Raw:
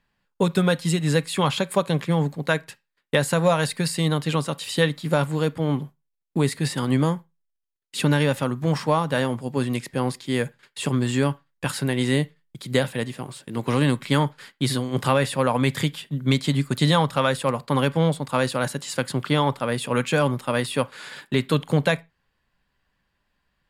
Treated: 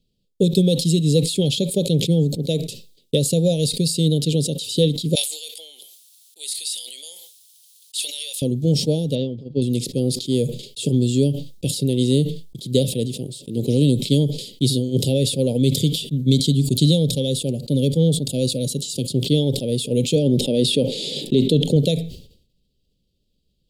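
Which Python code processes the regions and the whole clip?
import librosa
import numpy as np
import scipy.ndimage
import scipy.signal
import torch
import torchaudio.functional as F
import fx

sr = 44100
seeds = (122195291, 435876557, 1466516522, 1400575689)

y = fx.chain(x, sr, fx.highpass(hz=1100.0, slope=24),
    fx.peak_eq(hz=10000.0, db=6.0, octaves=0.43),
    fx.sustainer(db_per_s=27.0), at=(5.15, 8.42))
y = fx.chain(y, sr, fx.lowpass(hz=4400.0, slope=24),
    fx.upward_expand(threshold_db=-31.0, expansion=2.5), at=(9.15, 9.62))
y = fx.chain(y, sr, fx.notch(hz=5200.0, q=27.0),
    fx.notch_cascade(direction='falling', hz=1.3), at=(16.2, 19.1))
y = fx.chain(y, sr, fx.lowpass(hz=3100.0, slope=6),
    fx.peak_eq(hz=110.0, db=-14.5, octaves=0.33),
    fx.env_flatten(amount_pct=70), at=(20.15, 21.76))
y = scipy.signal.sosfilt(scipy.signal.ellip(3, 1.0, 70, [480.0, 3500.0], 'bandstop', fs=sr, output='sos'), y)
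y = fx.high_shelf(y, sr, hz=8700.0, db=-3.5)
y = fx.sustainer(y, sr, db_per_s=89.0)
y = y * librosa.db_to_amplitude(5.0)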